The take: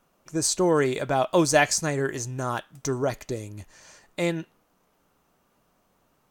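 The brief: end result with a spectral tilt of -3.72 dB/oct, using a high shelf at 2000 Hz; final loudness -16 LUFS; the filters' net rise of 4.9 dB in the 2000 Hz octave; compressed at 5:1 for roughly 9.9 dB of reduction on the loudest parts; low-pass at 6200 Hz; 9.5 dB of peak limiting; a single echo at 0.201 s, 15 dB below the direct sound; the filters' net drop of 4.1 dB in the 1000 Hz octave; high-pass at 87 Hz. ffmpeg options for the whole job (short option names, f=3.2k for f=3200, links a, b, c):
-af "highpass=87,lowpass=6.2k,equalizer=f=1k:t=o:g=-9,highshelf=f=2k:g=8.5,equalizer=f=2k:t=o:g=4,acompressor=threshold=-24dB:ratio=5,alimiter=limit=-22dB:level=0:latency=1,aecho=1:1:201:0.178,volume=17dB"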